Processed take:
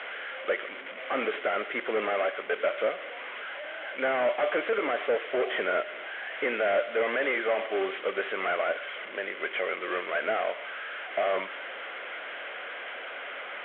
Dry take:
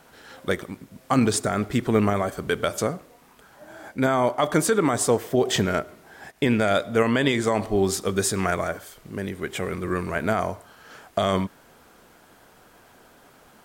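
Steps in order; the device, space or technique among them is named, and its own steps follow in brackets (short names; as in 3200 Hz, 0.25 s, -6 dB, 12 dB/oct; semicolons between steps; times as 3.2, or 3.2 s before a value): digital answering machine (BPF 320–3100 Hz; delta modulation 16 kbps, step -35.5 dBFS; speaker cabinet 500–3800 Hz, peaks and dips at 560 Hz +7 dB, 910 Hz -6 dB, 1500 Hz +5 dB, 2100 Hz +9 dB, 3200 Hz +9 dB)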